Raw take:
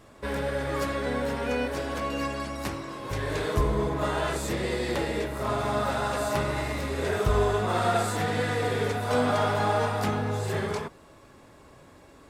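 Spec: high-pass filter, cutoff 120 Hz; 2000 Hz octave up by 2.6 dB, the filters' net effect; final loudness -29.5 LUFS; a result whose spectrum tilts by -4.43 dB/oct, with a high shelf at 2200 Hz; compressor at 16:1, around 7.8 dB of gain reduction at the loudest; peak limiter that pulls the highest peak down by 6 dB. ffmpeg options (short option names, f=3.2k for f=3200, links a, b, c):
-af "highpass=120,equalizer=f=2k:t=o:g=8,highshelf=f=2.2k:g=-9,acompressor=threshold=-28dB:ratio=16,volume=4.5dB,alimiter=limit=-20.5dB:level=0:latency=1"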